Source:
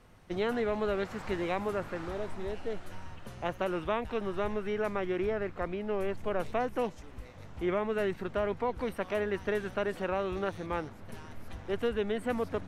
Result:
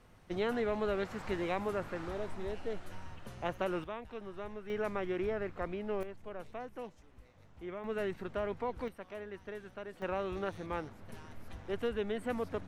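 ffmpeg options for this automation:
-af "asetnsamples=n=441:p=0,asendcmd='3.84 volume volume -11dB;4.7 volume volume -3.5dB;6.03 volume volume -12.5dB;7.84 volume volume -5dB;8.88 volume volume -13dB;10.02 volume volume -4dB',volume=-2.5dB"

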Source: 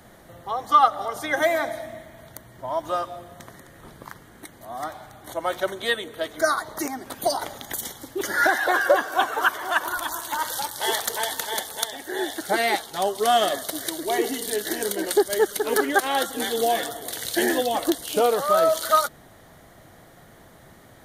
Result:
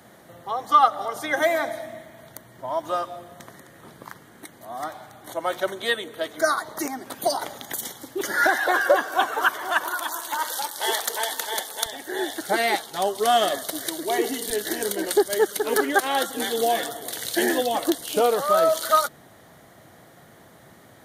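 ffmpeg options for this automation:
-af "asetnsamples=n=441:p=0,asendcmd='9.84 highpass f 280;11.86 highpass f 99;14.5 highpass f 41;15.26 highpass f 99',highpass=120"

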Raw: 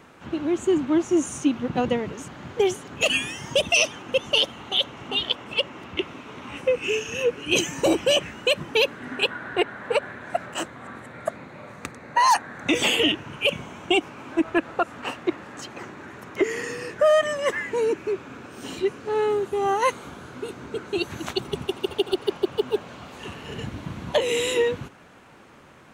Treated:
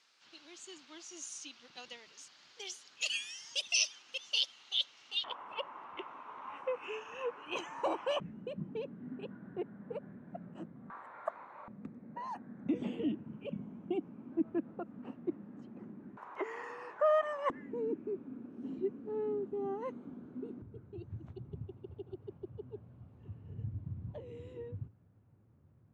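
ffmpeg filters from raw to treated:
-af "asetnsamples=n=441:p=0,asendcmd='5.24 bandpass f 1000;8.2 bandpass f 190;10.9 bandpass f 1000;11.68 bandpass f 210;16.17 bandpass f 950;17.5 bandpass f 240;20.62 bandpass f 100',bandpass=f=4.8k:t=q:w=3.6:csg=0"

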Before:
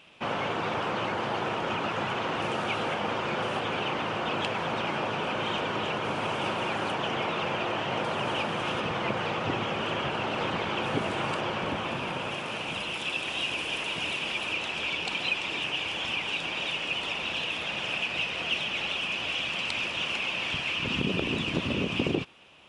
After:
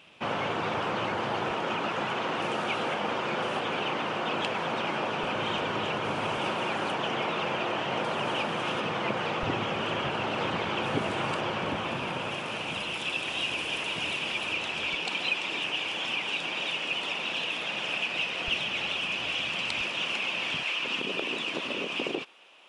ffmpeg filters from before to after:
-af "asetnsamples=n=441:p=0,asendcmd='1.51 highpass f 150;5.23 highpass f 45;6.37 highpass f 130;9.43 highpass f 62;14.94 highpass f 170;18.48 highpass f 71;19.81 highpass f 160;20.63 highpass f 410',highpass=52"

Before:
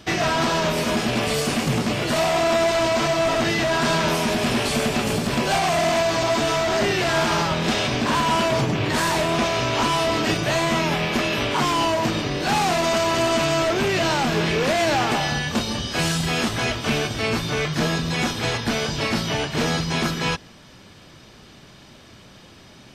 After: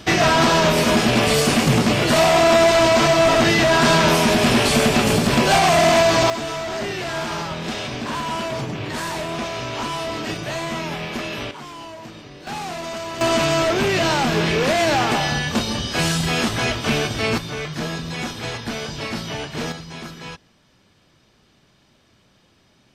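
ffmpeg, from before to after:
-af "asetnsamples=n=441:p=0,asendcmd='6.3 volume volume -5.5dB;11.51 volume volume -15.5dB;12.47 volume volume -9dB;13.21 volume volume 2dB;17.38 volume volume -4.5dB;19.72 volume volume -11.5dB',volume=5.5dB"

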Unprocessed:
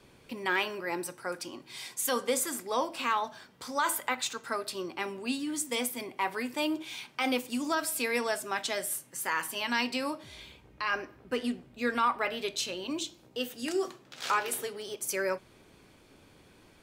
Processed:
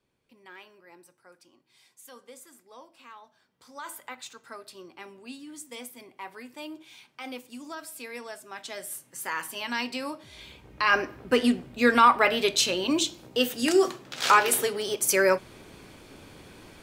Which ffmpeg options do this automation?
-af "volume=9.5dB,afade=t=in:st=3.34:d=0.67:silence=0.334965,afade=t=in:st=8.48:d=0.75:silence=0.375837,afade=t=in:st=10.31:d=0.67:silence=0.298538"

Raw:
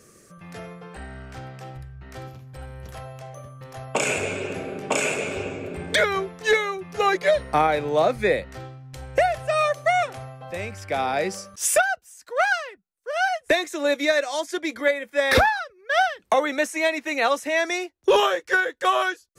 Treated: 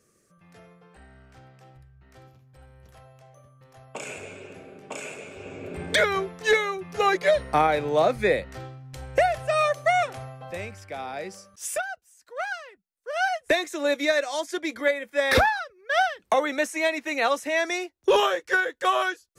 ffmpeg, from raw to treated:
-af "volume=7dB,afade=t=in:st=5.38:d=0.46:silence=0.251189,afade=t=out:st=10.42:d=0.51:silence=0.354813,afade=t=in:st=12.59:d=0.65:silence=0.398107"

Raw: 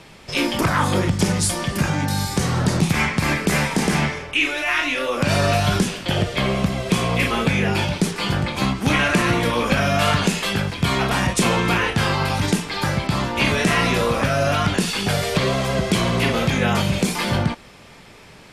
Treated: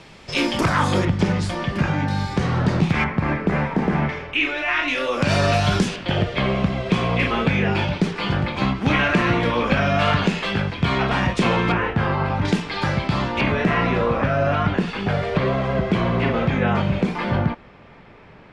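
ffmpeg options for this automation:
-af "asetnsamples=n=441:p=0,asendcmd='1.05 lowpass f 3000;3.04 lowpass f 1500;4.09 lowpass f 3100;4.88 lowpass f 6300;5.96 lowpass f 3300;11.72 lowpass f 1700;12.45 lowpass f 4100;13.41 lowpass f 2000',lowpass=7.2k"

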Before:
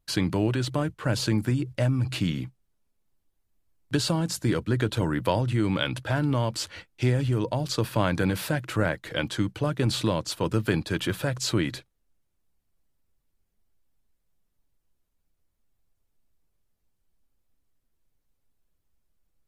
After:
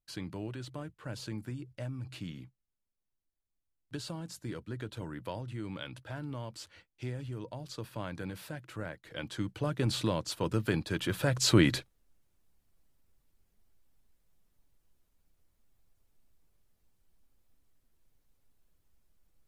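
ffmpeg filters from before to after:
-af "volume=3.5dB,afade=t=in:st=9.04:d=0.69:silence=0.334965,afade=t=in:st=11.06:d=0.61:silence=0.354813"

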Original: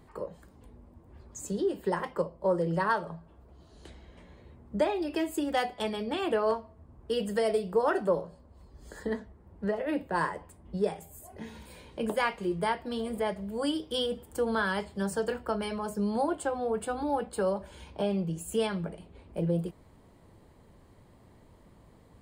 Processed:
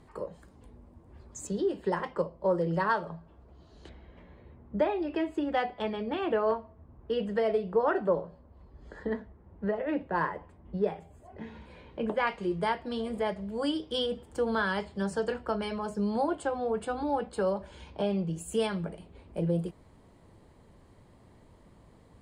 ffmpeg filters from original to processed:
-af "asetnsamples=n=441:p=0,asendcmd='1.47 lowpass f 5800;3.89 lowpass f 2700;12.27 lowpass f 6500;18.36 lowpass f 11000',lowpass=11k"

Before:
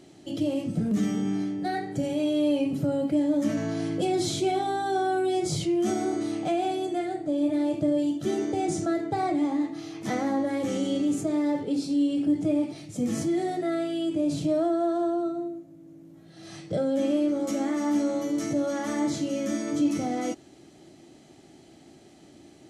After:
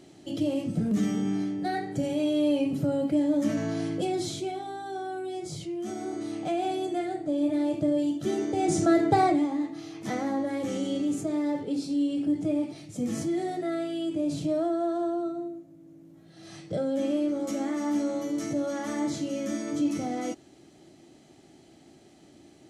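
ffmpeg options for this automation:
-af "volume=16dB,afade=t=out:st=3.77:d=0.81:silence=0.375837,afade=t=in:st=5.88:d=0.88:silence=0.398107,afade=t=in:st=8.52:d=0.59:silence=0.375837,afade=t=out:st=9.11:d=0.36:silence=0.316228"

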